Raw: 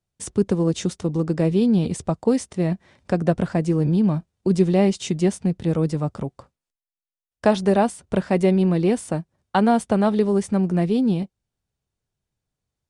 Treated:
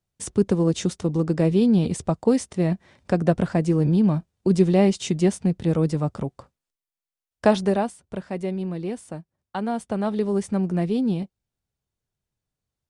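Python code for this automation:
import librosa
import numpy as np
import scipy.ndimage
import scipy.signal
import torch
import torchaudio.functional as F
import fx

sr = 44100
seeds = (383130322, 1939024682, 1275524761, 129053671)

y = fx.gain(x, sr, db=fx.line((7.56, 0.0), (8.03, -10.0), (9.58, -10.0), (10.38, -3.0)))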